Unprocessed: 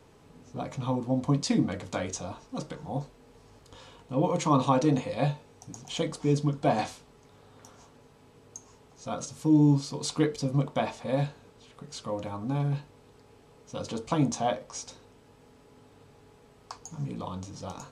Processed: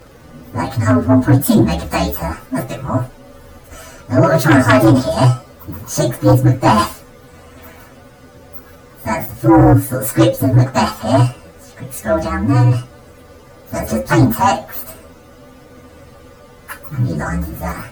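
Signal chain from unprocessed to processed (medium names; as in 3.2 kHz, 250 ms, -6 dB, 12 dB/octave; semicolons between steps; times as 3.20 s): frequency axis rescaled in octaves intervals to 129%; sine folder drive 7 dB, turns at -12.5 dBFS; trim +8.5 dB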